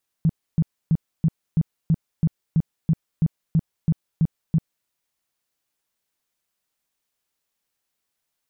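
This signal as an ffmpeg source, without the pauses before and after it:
-f lavfi -i "aevalsrc='0.2*sin(2*PI*161*mod(t,0.33))*lt(mod(t,0.33),7/161)':d=4.62:s=44100"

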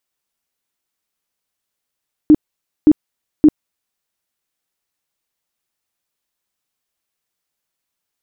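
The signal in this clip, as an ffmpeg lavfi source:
-f lavfi -i "aevalsrc='0.668*sin(2*PI*304*mod(t,0.57))*lt(mod(t,0.57),14/304)':d=1.71:s=44100"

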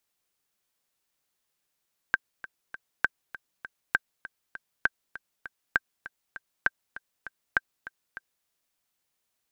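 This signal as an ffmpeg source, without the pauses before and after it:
-f lavfi -i "aevalsrc='pow(10,(-8-17*gte(mod(t,3*60/199),60/199))/20)*sin(2*PI*1570*mod(t,60/199))*exp(-6.91*mod(t,60/199)/0.03)':d=6.33:s=44100"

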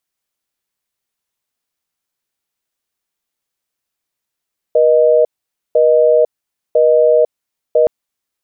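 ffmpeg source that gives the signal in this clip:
-f lavfi -i "aevalsrc='0.316*(sin(2*PI*480*t)+sin(2*PI*620*t))*clip(min(mod(t,1),0.5-mod(t,1))/0.005,0,1)':d=3.12:s=44100"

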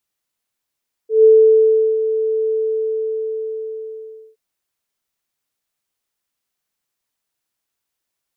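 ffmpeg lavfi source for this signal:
-f lavfi -i "aevalsrc='0.562*sin(2*PI*440*t)':d=3.27:s=44100,afade=t=in:d=0.149,afade=t=out:st=0.149:d=0.736:silence=0.299,afade=t=out:st=1.42:d=1.85"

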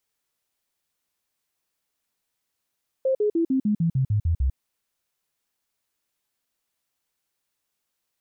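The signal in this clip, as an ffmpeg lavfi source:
-f lavfi -i "aevalsrc='0.119*clip(min(mod(t,0.15),0.1-mod(t,0.15))/0.005,0,1)*sin(2*PI*528*pow(2,-floor(t/0.15)/3)*mod(t,0.15))':d=1.5:s=44100"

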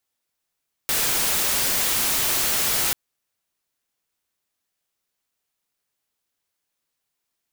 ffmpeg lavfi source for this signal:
-f lavfi -i "anoisesrc=c=white:a=0.138:d=2.04:r=44100:seed=1"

